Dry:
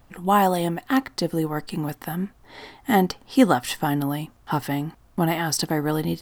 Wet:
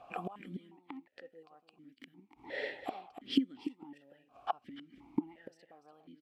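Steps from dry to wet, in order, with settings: dynamic bell 720 Hz, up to -5 dB, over -35 dBFS, Q 3.1; inverted gate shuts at -20 dBFS, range -35 dB; companded quantiser 8-bit; on a send: delay 291 ms -10 dB; on the sum: stepped vowel filter 2.8 Hz; trim +14.5 dB

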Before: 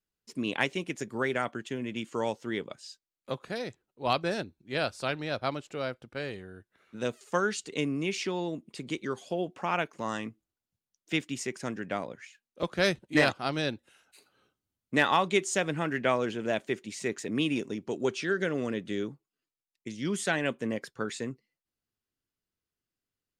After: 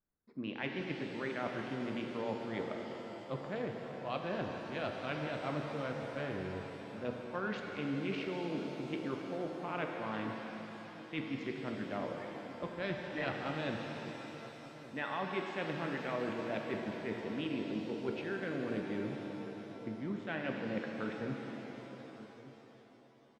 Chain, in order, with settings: local Wiener filter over 15 samples; low-pass 3.4 kHz 24 dB/octave; band-stop 420 Hz, Q 12; reverse; compression, threshold -38 dBFS, peak gain reduction 18 dB; reverse; echo from a far wall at 200 m, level -16 dB; pitch-shifted reverb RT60 3.8 s, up +7 st, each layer -8 dB, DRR 1.5 dB; trim +1.5 dB

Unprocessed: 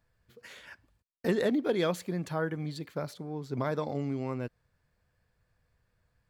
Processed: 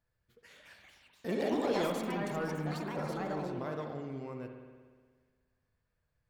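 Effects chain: ever faster or slower copies 304 ms, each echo +4 st, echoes 3; 1.51–3.52 s: waveshaping leveller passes 1; spring tank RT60 1.6 s, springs 59 ms, chirp 40 ms, DRR 4 dB; trim -9 dB

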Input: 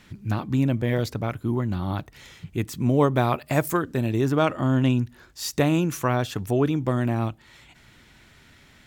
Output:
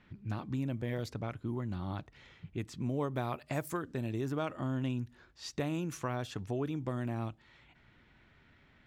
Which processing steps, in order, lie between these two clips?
level-controlled noise filter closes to 2.5 kHz, open at -19 dBFS; compression 2:1, threshold -25 dBFS, peak gain reduction 6.5 dB; trim -9 dB

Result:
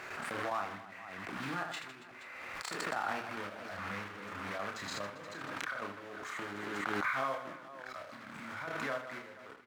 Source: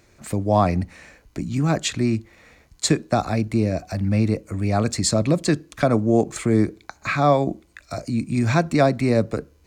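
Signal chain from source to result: block-companded coder 3-bit; Doppler pass-by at 3.50 s, 23 m/s, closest 7.9 m; compression 8:1, threshold -37 dBFS, peak gain reduction 21 dB; high-pass 410 Hz 6 dB/octave; trance gate ".x...xxx" 147 bpm -12 dB; low-pass 3.3 kHz 6 dB/octave; peaking EQ 1.4 kHz +15 dB 1.9 oct; reverse bouncing-ball echo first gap 30 ms, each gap 1.6×, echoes 5; swell ahead of each attack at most 21 dB/s; trim -2 dB

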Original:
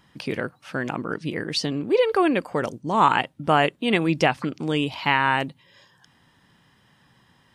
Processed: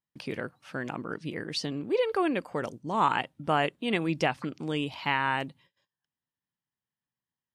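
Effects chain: gate -50 dBFS, range -30 dB; trim -7 dB

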